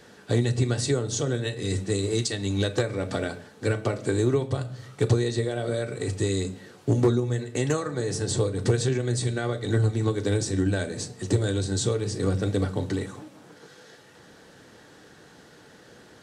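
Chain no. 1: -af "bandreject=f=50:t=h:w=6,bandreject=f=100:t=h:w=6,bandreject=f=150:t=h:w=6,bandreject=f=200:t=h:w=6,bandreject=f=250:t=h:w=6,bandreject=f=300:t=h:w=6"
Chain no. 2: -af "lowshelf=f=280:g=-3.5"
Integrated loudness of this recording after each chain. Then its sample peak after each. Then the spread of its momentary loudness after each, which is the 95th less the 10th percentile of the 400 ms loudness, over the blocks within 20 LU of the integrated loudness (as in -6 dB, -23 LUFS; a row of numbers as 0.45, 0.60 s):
-27.0, -28.5 LUFS; -10.0, -12.0 dBFS; 7, 7 LU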